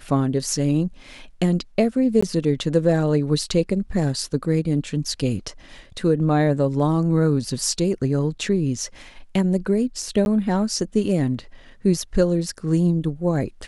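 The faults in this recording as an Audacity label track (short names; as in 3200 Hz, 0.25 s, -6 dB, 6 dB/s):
2.210000	2.230000	gap 15 ms
10.250000	10.260000	gap 11 ms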